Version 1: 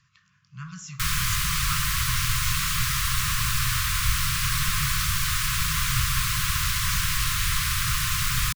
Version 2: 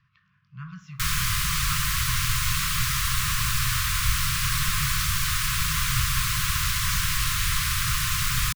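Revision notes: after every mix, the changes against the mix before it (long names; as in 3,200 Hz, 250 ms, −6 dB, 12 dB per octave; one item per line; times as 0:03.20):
speech: add high-frequency loss of the air 290 metres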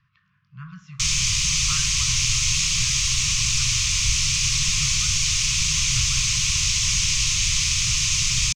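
first sound: add drawn EQ curve 630 Hz 0 dB, 1,600 Hz −16 dB, 2,400 Hz +6 dB, 4,100 Hz +5 dB, 6,400 Hz +14 dB, 13,000 Hz −23 dB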